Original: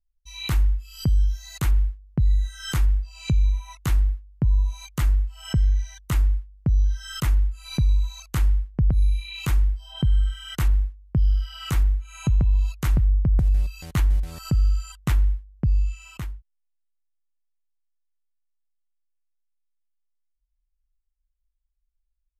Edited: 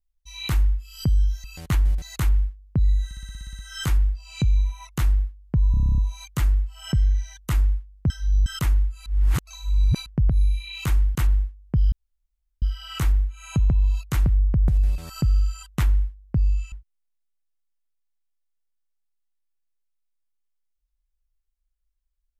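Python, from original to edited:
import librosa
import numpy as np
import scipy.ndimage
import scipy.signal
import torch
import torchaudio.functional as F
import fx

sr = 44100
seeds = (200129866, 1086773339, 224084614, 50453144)

y = fx.edit(x, sr, fx.stutter(start_s=2.47, slice_s=0.06, count=10),
    fx.stutter(start_s=4.59, slice_s=0.03, count=10),
    fx.reverse_span(start_s=6.71, length_s=0.36),
    fx.reverse_span(start_s=7.67, length_s=1.0),
    fx.cut(start_s=9.76, length_s=0.8),
    fx.insert_room_tone(at_s=11.33, length_s=0.7),
    fx.move(start_s=13.69, length_s=0.58, to_s=1.44),
    fx.cut(start_s=16.01, length_s=0.3), tone=tone)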